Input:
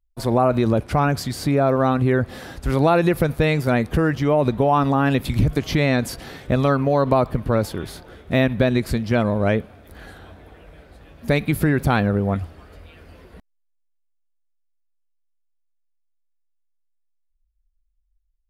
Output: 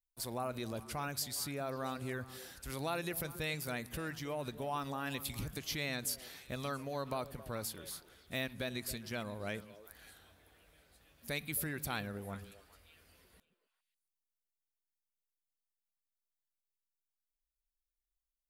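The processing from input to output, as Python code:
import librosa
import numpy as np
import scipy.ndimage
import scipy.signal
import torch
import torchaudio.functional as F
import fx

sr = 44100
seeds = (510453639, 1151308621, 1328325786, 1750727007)

y = librosa.effects.preemphasis(x, coef=0.9, zi=[0.0])
y = fx.echo_stepped(y, sr, ms=136, hz=170.0, octaves=1.4, feedback_pct=70, wet_db=-9)
y = y * 10.0 ** (-4.0 / 20.0)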